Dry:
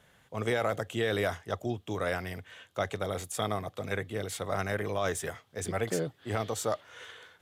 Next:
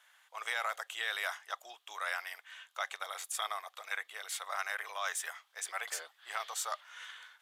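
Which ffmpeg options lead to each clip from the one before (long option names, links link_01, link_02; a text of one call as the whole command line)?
ffmpeg -i in.wav -af "highpass=frequency=920:width=0.5412,highpass=frequency=920:width=1.3066" out.wav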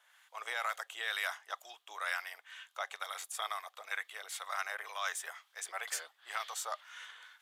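ffmpeg -i in.wav -filter_complex "[0:a]acrossover=split=1000[link_01][link_02];[link_01]aeval=exprs='val(0)*(1-0.5/2+0.5/2*cos(2*PI*2.1*n/s))':channel_layout=same[link_03];[link_02]aeval=exprs='val(0)*(1-0.5/2-0.5/2*cos(2*PI*2.1*n/s))':channel_layout=same[link_04];[link_03][link_04]amix=inputs=2:normalize=0,volume=1.5dB" out.wav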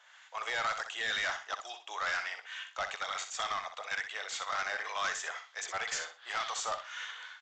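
ffmpeg -i in.wav -af "asoftclip=type=tanh:threshold=-35.5dB,aecho=1:1:62|124|186:0.355|0.0816|0.0188,aresample=16000,aresample=44100,volume=7.5dB" out.wav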